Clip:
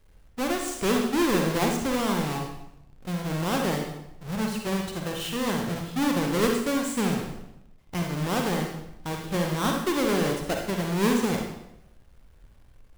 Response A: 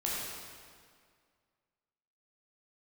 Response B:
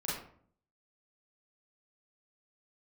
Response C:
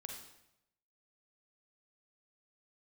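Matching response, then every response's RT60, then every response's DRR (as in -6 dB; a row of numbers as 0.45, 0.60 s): C; 2.0, 0.55, 0.85 s; -6.0, -8.0, 1.5 dB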